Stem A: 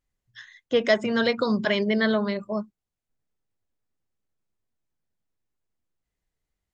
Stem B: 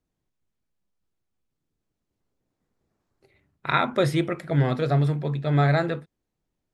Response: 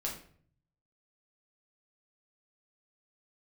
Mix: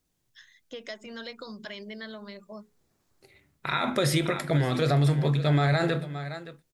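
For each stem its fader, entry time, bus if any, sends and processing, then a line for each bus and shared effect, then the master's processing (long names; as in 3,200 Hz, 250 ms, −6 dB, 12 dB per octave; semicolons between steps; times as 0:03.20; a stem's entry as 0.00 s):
−13.0 dB, 0.00 s, no send, no echo send, mains-hum notches 60/120/180/240/300/360/420 Hz; downward compressor 4 to 1, threshold −26 dBFS, peak gain reduction 10 dB
0.0 dB, 0.00 s, send −12 dB, echo send −16 dB, no processing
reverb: on, RT60 0.55 s, pre-delay 5 ms
echo: single-tap delay 569 ms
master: high-shelf EQ 2,800 Hz +11.5 dB; brickwall limiter −15.5 dBFS, peak gain reduction 13.5 dB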